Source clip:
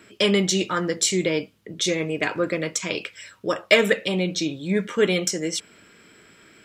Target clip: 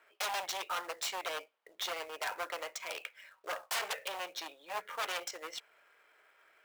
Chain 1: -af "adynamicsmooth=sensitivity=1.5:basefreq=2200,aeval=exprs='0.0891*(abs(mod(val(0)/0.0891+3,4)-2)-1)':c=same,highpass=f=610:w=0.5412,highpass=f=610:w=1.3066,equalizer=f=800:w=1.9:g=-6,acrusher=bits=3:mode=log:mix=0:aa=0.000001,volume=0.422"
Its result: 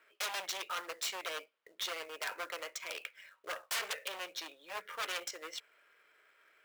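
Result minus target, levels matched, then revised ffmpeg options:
1 kHz band -3.0 dB
-af "adynamicsmooth=sensitivity=1.5:basefreq=2200,aeval=exprs='0.0891*(abs(mod(val(0)/0.0891+3,4)-2)-1)':c=same,highpass=f=610:w=0.5412,highpass=f=610:w=1.3066,equalizer=f=800:w=1.9:g=2,acrusher=bits=3:mode=log:mix=0:aa=0.000001,volume=0.422"

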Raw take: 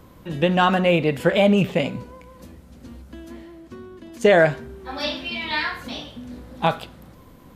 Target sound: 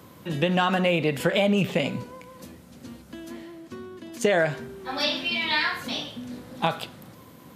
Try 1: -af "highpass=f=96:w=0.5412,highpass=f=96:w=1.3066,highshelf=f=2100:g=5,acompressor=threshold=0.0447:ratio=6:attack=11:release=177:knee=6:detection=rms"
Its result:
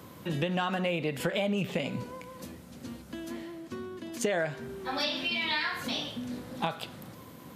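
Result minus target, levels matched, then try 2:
compression: peak gain reduction +8 dB
-af "highpass=f=96:w=0.5412,highpass=f=96:w=1.3066,highshelf=f=2100:g=5,acompressor=threshold=0.133:ratio=6:attack=11:release=177:knee=6:detection=rms"

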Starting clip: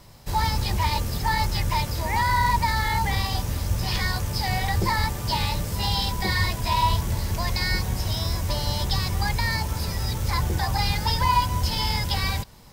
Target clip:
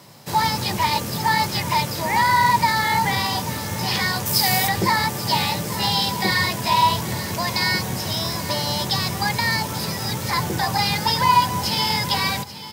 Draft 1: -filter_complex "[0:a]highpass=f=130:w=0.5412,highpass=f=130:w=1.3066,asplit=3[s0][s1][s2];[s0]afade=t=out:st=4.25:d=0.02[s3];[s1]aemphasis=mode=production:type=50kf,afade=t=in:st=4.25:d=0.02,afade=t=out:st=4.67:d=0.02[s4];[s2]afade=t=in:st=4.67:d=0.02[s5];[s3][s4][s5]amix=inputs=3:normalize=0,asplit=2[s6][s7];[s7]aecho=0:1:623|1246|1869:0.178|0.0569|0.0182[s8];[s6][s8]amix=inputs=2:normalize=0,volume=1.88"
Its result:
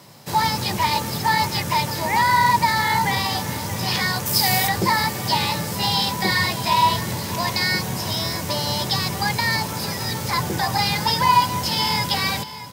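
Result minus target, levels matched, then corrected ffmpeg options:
echo 212 ms early
-filter_complex "[0:a]highpass=f=130:w=0.5412,highpass=f=130:w=1.3066,asplit=3[s0][s1][s2];[s0]afade=t=out:st=4.25:d=0.02[s3];[s1]aemphasis=mode=production:type=50kf,afade=t=in:st=4.25:d=0.02,afade=t=out:st=4.67:d=0.02[s4];[s2]afade=t=in:st=4.67:d=0.02[s5];[s3][s4][s5]amix=inputs=3:normalize=0,asplit=2[s6][s7];[s7]aecho=0:1:835|1670|2505:0.178|0.0569|0.0182[s8];[s6][s8]amix=inputs=2:normalize=0,volume=1.88"

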